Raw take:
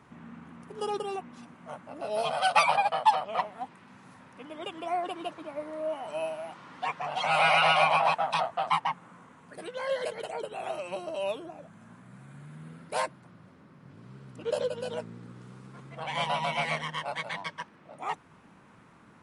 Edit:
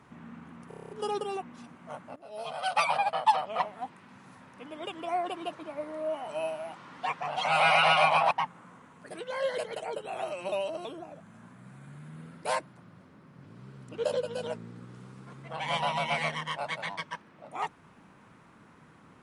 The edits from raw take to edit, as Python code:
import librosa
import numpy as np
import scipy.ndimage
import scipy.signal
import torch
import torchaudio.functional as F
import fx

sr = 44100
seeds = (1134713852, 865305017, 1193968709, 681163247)

y = fx.edit(x, sr, fx.stutter(start_s=0.68, slice_s=0.03, count=8),
    fx.fade_in_from(start_s=1.95, length_s=1.66, curve='qsin', floor_db=-17.0),
    fx.cut(start_s=8.1, length_s=0.68),
    fx.reverse_span(start_s=10.99, length_s=0.33), tone=tone)